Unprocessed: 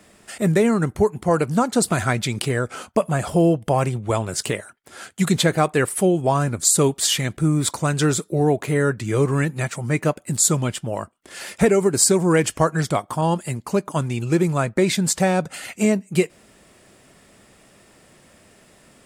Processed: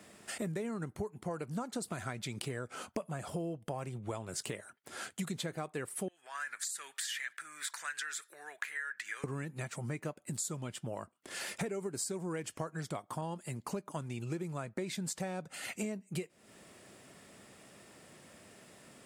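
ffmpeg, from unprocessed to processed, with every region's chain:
-filter_complex "[0:a]asettb=1/sr,asplit=3[a][b][c];[a]atrim=end=6.084[d];[b]atrim=start=6.08:end=9.24,asetpts=PTS-STARTPTS,afade=t=in:d=0.004:c=qsin,afade=t=out:st=3.156:d=0.004:c=qsin,acompressor=threshold=-25dB:ratio=4:attack=3.2:release=140:knee=1:detection=peak,highpass=f=1.7k:t=q:w=5.7[e];[c]atrim=start=9.236[f];[d][e]acrossfade=d=0.004:c1=hsin:c2=qsin[g];[g][f]acrossfade=d=0.004:c1=qsin:c2=hsin,highpass=93,acompressor=threshold=-32dB:ratio=6,volume=-4.5dB"

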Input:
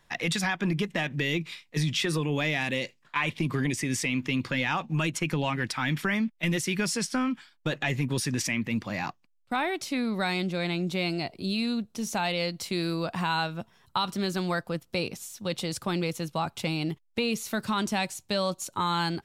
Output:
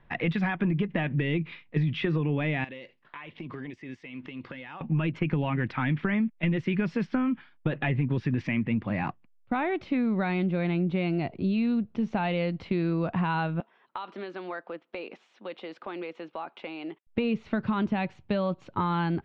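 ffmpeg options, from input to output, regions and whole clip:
-filter_complex "[0:a]asettb=1/sr,asplit=3[a][b][c];[a]atrim=end=2.644[d];[b]atrim=start=2.64:end=4.81,asetpts=PTS-STARTPTS,afade=t=in:d=0.004:c=qsin,afade=t=out:st=2.166:d=0.004:c=qsin,bass=f=250:g=-12,treble=f=4k:g=10,acompressor=threshold=-40dB:ratio=5:attack=3.2:release=140:knee=1:detection=peak,bandreject=f=2.4k:w=21[e];[c]atrim=start=4.806[f];[d][e]acrossfade=d=0.004:c1=hsin:c2=qsin[g];[g][f]acrossfade=d=0.004:c1=qsin:c2=hsin,asettb=1/sr,asplit=3[h][i][j];[h]atrim=end=13.604[k];[i]atrim=start=13.6:end=17.07,asetpts=PTS-STARTPTS,afade=t=in:d=0.004:c=qsin,afade=t=out:st=3.466:d=0.004:c=qsin,highpass=f=340:w=0.5412,highpass=f=340:w=1.3066,equalizer=f=430:t=o:w=0.9:g=-3.5,acompressor=threshold=-39dB:ratio=2:attack=3.2:release=140:knee=1:detection=peak[l];[j]atrim=start=17.066[m];[k][l]acrossfade=d=0.004:c1=hsin:c2=qsin[n];[n][m]acrossfade=d=0.004:c1=qsin:c2=hsin,lowpass=f=2.8k:w=0.5412,lowpass=f=2.8k:w=1.3066,lowshelf=f=450:g=8.5,acompressor=threshold=-23dB:ratio=6"

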